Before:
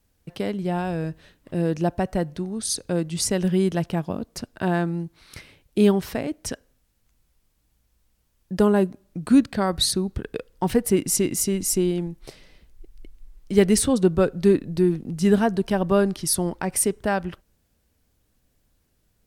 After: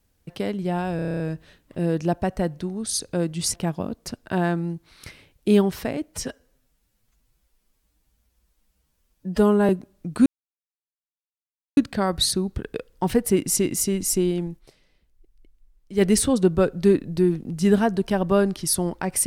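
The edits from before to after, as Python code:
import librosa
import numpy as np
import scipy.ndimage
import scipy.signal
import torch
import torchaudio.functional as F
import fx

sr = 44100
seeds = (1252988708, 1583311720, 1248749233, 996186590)

y = fx.edit(x, sr, fx.stutter(start_s=0.96, slice_s=0.03, count=9),
    fx.cut(start_s=3.3, length_s=0.54),
    fx.stretch_span(start_s=6.42, length_s=2.38, factor=1.5),
    fx.insert_silence(at_s=9.37, length_s=1.51),
    fx.fade_down_up(start_s=12.16, length_s=1.46, db=-12.0, fade_s=0.39, curve='exp'), tone=tone)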